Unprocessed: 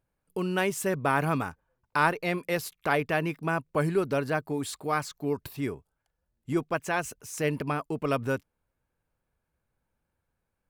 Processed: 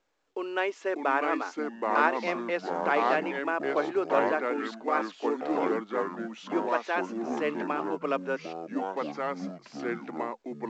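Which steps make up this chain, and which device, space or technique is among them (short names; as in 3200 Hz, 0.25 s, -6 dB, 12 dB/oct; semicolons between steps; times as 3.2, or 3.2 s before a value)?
elliptic high-pass 280 Hz, stop band 60 dB; echoes that change speed 0.5 s, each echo -4 st, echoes 3; telephone (BPF 270–3200 Hz; µ-law 128 kbps 16000 Hz)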